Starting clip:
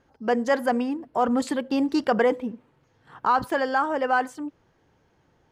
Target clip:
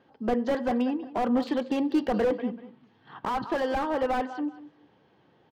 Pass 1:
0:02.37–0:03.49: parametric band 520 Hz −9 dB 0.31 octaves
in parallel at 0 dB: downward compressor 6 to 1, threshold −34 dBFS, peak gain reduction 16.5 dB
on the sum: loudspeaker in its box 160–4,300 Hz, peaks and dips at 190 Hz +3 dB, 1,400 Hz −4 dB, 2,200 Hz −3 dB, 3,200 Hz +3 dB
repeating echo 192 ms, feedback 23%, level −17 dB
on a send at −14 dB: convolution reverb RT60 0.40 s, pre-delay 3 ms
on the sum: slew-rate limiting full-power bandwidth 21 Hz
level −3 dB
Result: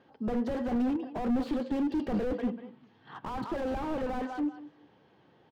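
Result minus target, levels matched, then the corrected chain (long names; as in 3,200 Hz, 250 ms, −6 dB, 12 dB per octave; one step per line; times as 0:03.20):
slew-rate limiting: distortion +8 dB
0:02.37–0:03.49: parametric band 520 Hz −9 dB 0.31 octaves
in parallel at 0 dB: downward compressor 6 to 1, threshold −34 dBFS, peak gain reduction 16.5 dB
on the sum: loudspeaker in its box 160–4,300 Hz, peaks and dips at 190 Hz +3 dB, 1,400 Hz −4 dB, 2,200 Hz −3 dB, 3,200 Hz +3 dB
repeating echo 192 ms, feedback 23%, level −17 dB
on a send at −14 dB: convolution reverb RT60 0.40 s, pre-delay 3 ms
on the sum: slew-rate limiting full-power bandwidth 64.5 Hz
level −3 dB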